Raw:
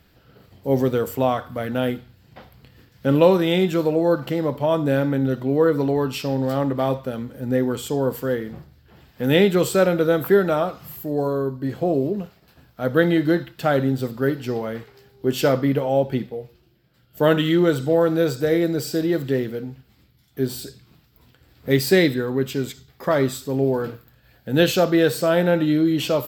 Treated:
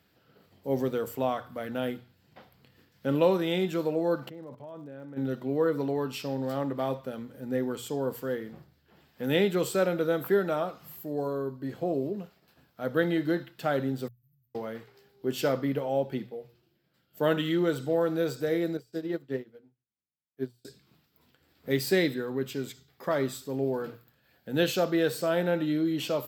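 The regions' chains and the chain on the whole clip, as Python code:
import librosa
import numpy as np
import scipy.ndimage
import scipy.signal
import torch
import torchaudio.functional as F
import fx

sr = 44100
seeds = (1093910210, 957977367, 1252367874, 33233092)

y = fx.lowpass(x, sr, hz=1600.0, slope=6, at=(4.28, 5.16), fade=0.02)
y = fx.level_steps(y, sr, step_db=17, at=(4.28, 5.16), fade=0.02)
y = fx.dmg_crackle(y, sr, seeds[0], per_s=76.0, level_db=-47.0, at=(4.28, 5.16), fade=0.02)
y = fx.chain(y, sr, fx.cheby2_bandstop(low_hz=320.0, high_hz=6500.0, order=4, stop_db=60),
    fx.level_steps(step_db=19), at=(14.08, 14.55))
y = fx.chain(y, sr, fx.high_shelf(hz=4400.0, db=-6.5),
    fx.hum_notches(base_hz=60, count=7),
    fx.upward_expand(threshold_db=-40.0, expansion=2.5), at=(18.77, 20.65))
y = scipy.signal.sosfilt(scipy.signal.butter(2, 78.0, 'highpass', fs=sr, output='sos'), y)
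y = fx.low_shelf(y, sr, hz=100.0, db=-7.0)
y = fx.hum_notches(y, sr, base_hz=60, count=2)
y = y * 10.0 ** (-8.0 / 20.0)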